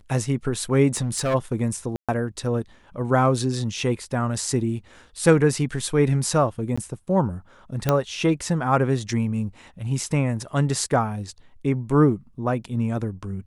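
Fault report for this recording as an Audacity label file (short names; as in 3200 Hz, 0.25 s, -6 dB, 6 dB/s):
0.940000	1.350000	clipped -19.5 dBFS
1.960000	2.090000	gap 0.126 s
6.760000	6.780000	gap 15 ms
7.890000	7.890000	pop -6 dBFS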